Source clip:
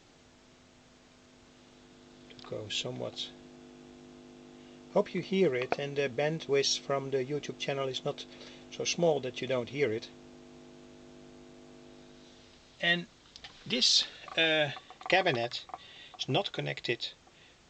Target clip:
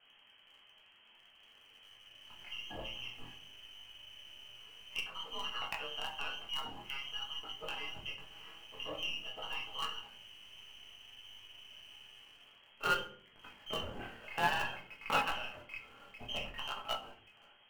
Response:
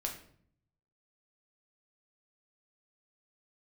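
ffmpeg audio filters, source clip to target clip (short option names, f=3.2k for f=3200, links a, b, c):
-filter_complex "[0:a]lowpass=f=2.8k:t=q:w=0.5098,lowpass=f=2.8k:t=q:w=0.6013,lowpass=f=2.8k:t=q:w=0.9,lowpass=f=2.8k:t=q:w=2.563,afreqshift=-3300,acrossover=split=1700[a][b];[b]acompressor=threshold=-39dB:ratio=20[c];[a][c]amix=inputs=2:normalize=0,flanger=delay=19:depth=7.1:speed=0.53,asplit=2[d][e];[e]acrusher=bits=6:dc=4:mix=0:aa=0.000001,volume=-9dB[f];[d][f]amix=inputs=2:normalize=0[g];[1:a]atrim=start_sample=2205,asetrate=57330,aresample=44100[h];[g][h]afir=irnorm=-1:irlink=0,aeval=exprs='0.133*(cos(1*acos(clip(val(0)/0.133,-1,1)))-cos(1*PI/2))+0.0168*(cos(4*acos(clip(val(0)/0.133,-1,1)))-cos(4*PI/2))':c=same,volume=1dB"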